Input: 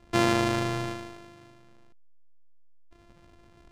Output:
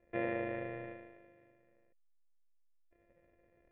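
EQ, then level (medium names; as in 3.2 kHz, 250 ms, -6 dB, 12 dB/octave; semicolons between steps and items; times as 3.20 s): cascade formant filter e; +2.0 dB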